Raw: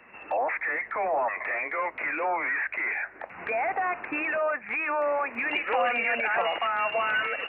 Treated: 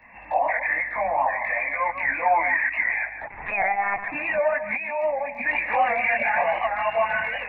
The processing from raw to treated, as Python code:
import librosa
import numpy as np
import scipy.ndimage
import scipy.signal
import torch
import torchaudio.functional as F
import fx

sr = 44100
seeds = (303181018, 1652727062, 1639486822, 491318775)

y = fx.low_shelf(x, sr, hz=140.0, db=6.0)
y = fx.fixed_phaser(y, sr, hz=2000.0, stages=8)
y = fx.chorus_voices(y, sr, voices=6, hz=0.92, base_ms=21, depth_ms=3.0, mix_pct=55)
y = fx.fixed_phaser(y, sr, hz=350.0, stages=6, at=(4.76, 5.46))
y = y + 10.0 ** (-10.5 / 20.0) * np.pad(y, (int(152 * sr / 1000.0), 0))[:len(y)]
y = fx.lpc_monotone(y, sr, seeds[0], pitch_hz=200.0, order=16, at=(3.22, 4.12))
y = fx.record_warp(y, sr, rpm=78.0, depth_cents=100.0)
y = y * librosa.db_to_amplitude(8.5)